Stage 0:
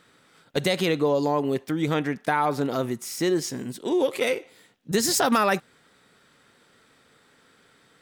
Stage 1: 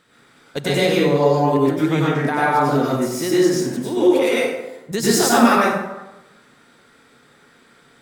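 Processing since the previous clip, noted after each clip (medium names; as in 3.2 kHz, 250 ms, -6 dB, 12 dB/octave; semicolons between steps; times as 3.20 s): plate-style reverb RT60 1 s, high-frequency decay 0.55×, pre-delay 85 ms, DRR -7 dB; trim -1 dB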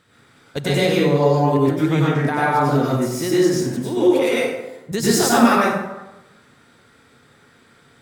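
peaking EQ 95 Hz +12 dB 0.85 oct; trim -1 dB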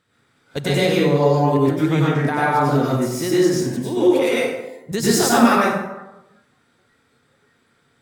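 spectral noise reduction 9 dB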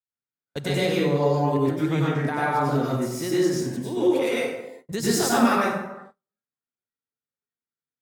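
gate -39 dBFS, range -35 dB; trim -5.5 dB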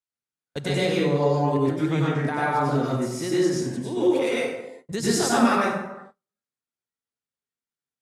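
low-pass 11 kHz 24 dB/octave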